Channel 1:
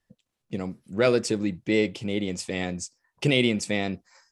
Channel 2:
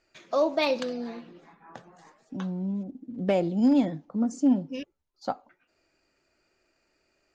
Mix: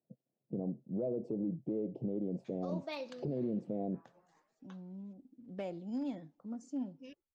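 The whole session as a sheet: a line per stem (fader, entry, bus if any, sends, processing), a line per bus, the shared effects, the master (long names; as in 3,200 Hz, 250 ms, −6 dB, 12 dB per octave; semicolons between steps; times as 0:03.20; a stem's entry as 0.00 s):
0.0 dB, 0.00 s, no send, elliptic band-pass filter 130–680 Hz, stop band 40 dB; downward compressor, threshold −26 dBFS, peak gain reduction 8.5 dB
−16.5 dB, 2.30 s, no send, no processing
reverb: not used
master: brickwall limiter −28 dBFS, peak gain reduction 11 dB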